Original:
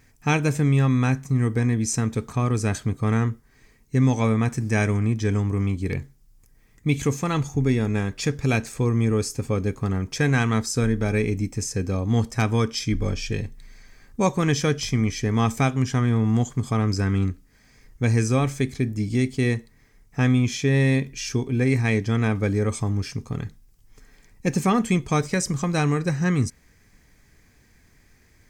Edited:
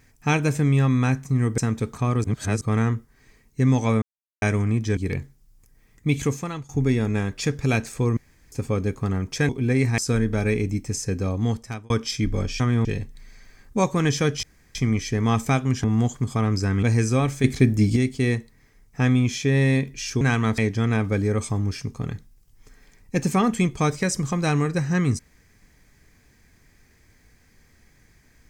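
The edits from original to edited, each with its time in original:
0:01.58–0:01.93: remove
0:02.59–0:02.96: reverse
0:04.37–0:04.77: silence
0:05.32–0:05.77: remove
0:07.04–0:07.49: fade out, to −20.5 dB
0:08.97–0:09.32: fill with room tone
0:10.29–0:10.66: swap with 0:21.40–0:21.89
0:12.02–0:12.58: fade out
0:14.86: splice in room tone 0.32 s
0:15.95–0:16.20: move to 0:13.28
0:17.19–0:18.02: remove
0:18.63–0:19.15: clip gain +7 dB

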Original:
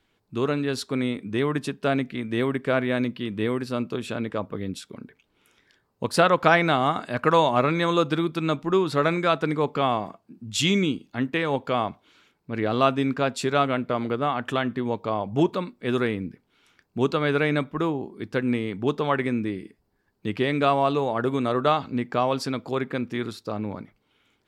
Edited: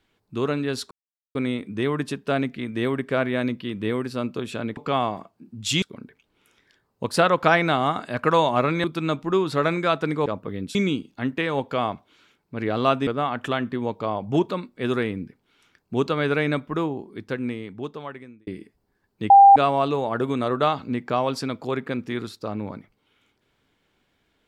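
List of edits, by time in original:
0:00.91: splice in silence 0.44 s
0:04.33–0:04.82: swap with 0:09.66–0:10.71
0:07.84–0:08.24: remove
0:13.03–0:14.11: remove
0:17.89–0:19.51: fade out
0:20.34–0:20.60: beep over 795 Hz −6.5 dBFS

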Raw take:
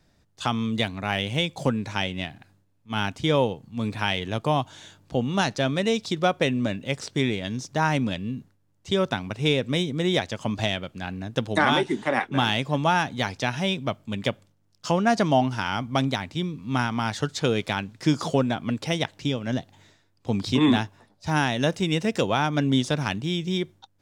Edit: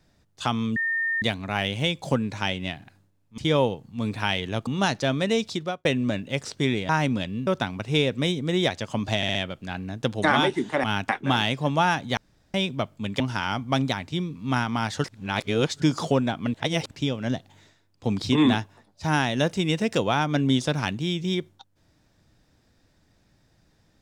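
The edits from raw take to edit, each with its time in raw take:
0:00.76: insert tone 1,820 Hz −22.5 dBFS 0.46 s
0:02.92–0:03.17: move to 0:12.17
0:04.46–0:05.23: remove
0:06.04–0:06.41: fade out
0:07.45–0:07.80: remove
0:08.38–0:08.98: remove
0:10.68: stutter 0.06 s, 4 plays
0:13.25–0:13.62: fill with room tone
0:14.28–0:15.43: remove
0:17.27–0:18.05: reverse
0:18.77–0:19.14: reverse

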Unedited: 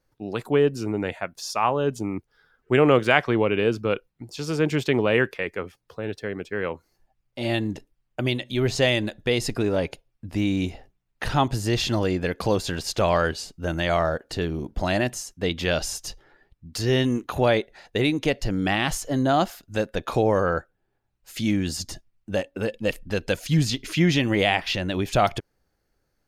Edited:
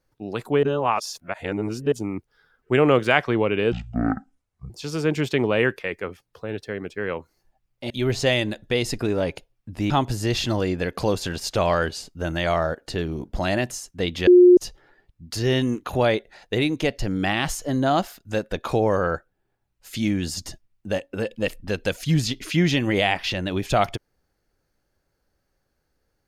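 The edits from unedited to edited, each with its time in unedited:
0:00.63–0:01.92: reverse
0:03.72–0:04.25: play speed 54%
0:07.45–0:08.46: remove
0:10.46–0:11.33: remove
0:15.70–0:16.00: beep over 358 Hz −7.5 dBFS

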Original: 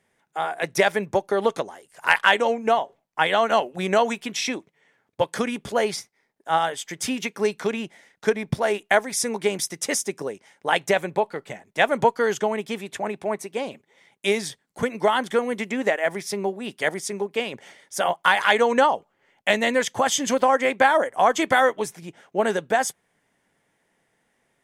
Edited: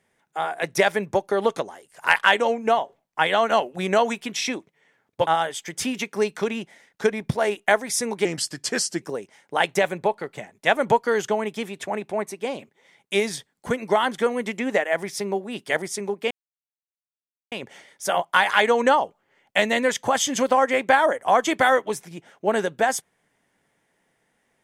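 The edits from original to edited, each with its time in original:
0:05.27–0:06.50: remove
0:09.48–0:10.14: play speed 86%
0:17.43: splice in silence 1.21 s

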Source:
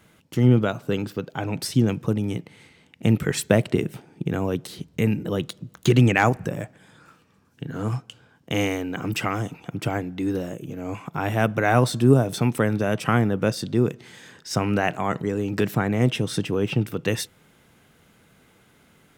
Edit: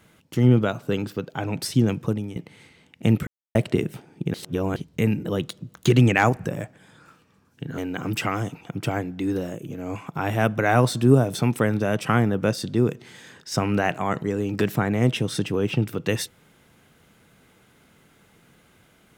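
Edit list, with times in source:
0:02.05–0:02.36: fade out, to −11.5 dB
0:03.27–0:03.55: silence
0:04.34–0:04.76: reverse
0:07.78–0:08.77: remove

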